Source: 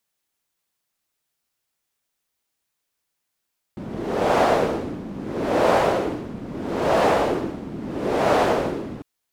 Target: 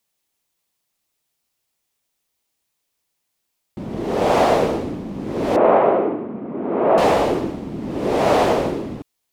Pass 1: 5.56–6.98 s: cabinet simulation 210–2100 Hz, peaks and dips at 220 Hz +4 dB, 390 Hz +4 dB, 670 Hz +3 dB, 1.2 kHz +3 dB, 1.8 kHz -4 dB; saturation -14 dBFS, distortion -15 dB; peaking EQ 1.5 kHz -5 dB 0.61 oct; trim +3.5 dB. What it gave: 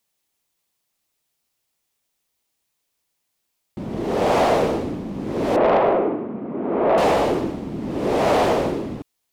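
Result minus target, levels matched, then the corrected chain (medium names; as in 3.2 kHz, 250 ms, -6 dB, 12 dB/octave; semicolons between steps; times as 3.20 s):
saturation: distortion +13 dB
5.56–6.98 s: cabinet simulation 210–2100 Hz, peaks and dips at 220 Hz +4 dB, 390 Hz +4 dB, 670 Hz +3 dB, 1.2 kHz +3 dB, 1.8 kHz -4 dB; saturation -5 dBFS, distortion -27 dB; peaking EQ 1.5 kHz -5 dB 0.61 oct; trim +3.5 dB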